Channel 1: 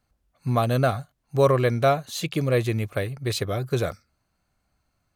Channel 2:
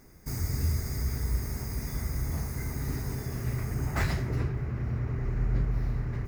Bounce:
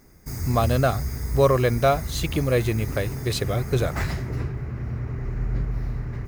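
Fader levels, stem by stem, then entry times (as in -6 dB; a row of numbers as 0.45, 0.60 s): +0.5, +1.5 dB; 0.00, 0.00 s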